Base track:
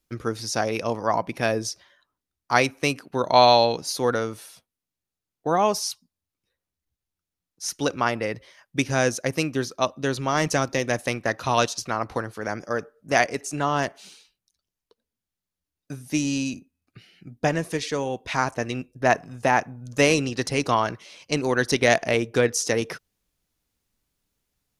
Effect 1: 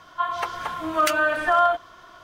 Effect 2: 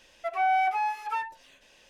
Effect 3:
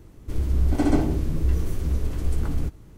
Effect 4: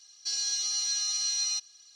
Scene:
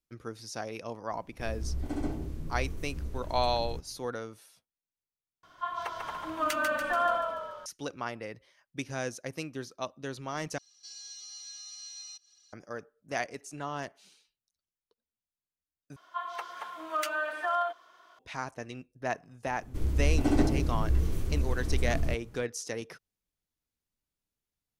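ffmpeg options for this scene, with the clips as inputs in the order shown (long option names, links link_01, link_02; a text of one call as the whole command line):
ffmpeg -i bed.wav -i cue0.wav -i cue1.wav -i cue2.wav -i cue3.wav -filter_complex "[3:a]asplit=2[link_01][link_02];[1:a]asplit=2[link_03][link_04];[0:a]volume=-13dB[link_05];[link_03]asplit=8[link_06][link_07][link_08][link_09][link_10][link_11][link_12][link_13];[link_07]adelay=144,afreqshift=-31,volume=-5dB[link_14];[link_08]adelay=288,afreqshift=-62,volume=-10.7dB[link_15];[link_09]adelay=432,afreqshift=-93,volume=-16.4dB[link_16];[link_10]adelay=576,afreqshift=-124,volume=-22dB[link_17];[link_11]adelay=720,afreqshift=-155,volume=-27.7dB[link_18];[link_12]adelay=864,afreqshift=-186,volume=-33.4dB[link_19];[link_13]adelay=1008,afreqshift=-217,volume=-39.1dB[link_20];[link_06][link_14][link_15][link_16][link_17][link_18][link_19][link_20]amix=inputs=8:normalize=0[link_21];[4:a]acompressor=mode=upward:threshold=-37dB:ratio=2.5:attack=3.2:release=140:knee=2.83:detection=peak[link_22];[link_04]highpass=410[link_23];[link_05]asplit=4[link_24][link_25][link_26][link_27];[link_24]atrim=end=5.434[link_28];[link_21]atrim=end=2.23,asetpts=PTS-STARTPTS,volume=-9.5dB[link_29];[link_25]atrim=start=7.656:end=10.584[link_30];[link_22]atrim=end=1.95,asetpts=PTS-STARTPTS,volume=-15.5dB[link_31];[link_26]atrim=start=12.526:end=15.964[link_32];[link_23]atrim=end=2.23,asetpts=PTS-STARTPTS,volume=-10.5dB[link_33];[link_27]atrim=start=18.186[link_34];[link_01]atrim=end=2.97,asetpts=PTS-STARTPTS,volume=-13dB,afade=type=in:duration=0.004:curve=hsin,afade=type=out:start_time=2.966:duration=0.004:curve=hsin,adelay=1110[link_35];[link_02]atrim=end=2.97,asetpts=PTS-STARTPTS,volume=-4.5dB,afade=type=in:duration=0.004:curve=hsin,afade=type=out:start_time=2.966:duration=0.004:curve=hsin,adelay=19460[link_36];[link_28][link_29]acrossfade=duration=0.004:curve1=hsin:curve2=hsin[link_37];[link_37][link_30]acrossfade=duration=0.004:curve1=hsin:curve2=hsin[link_38];[link_38][link_31]acrossfade=duration=0.004:curve1=hsin:curve2=hsin[link_39];[link_39][link_32]acrossfade=duration=0.004:curve1=hsin:curve2=hsin[link_40];[link_40][link_33]acrossfade=duration=0.004:curve1=hsin:curve2=hsin[link_41];[link_41][link_34]acrossfade=duration=0.004:curve1=hsin:curve2=hsin[link_42];[link_42][link_35][link_36]amix=inputs=3:normalize=0" out.wav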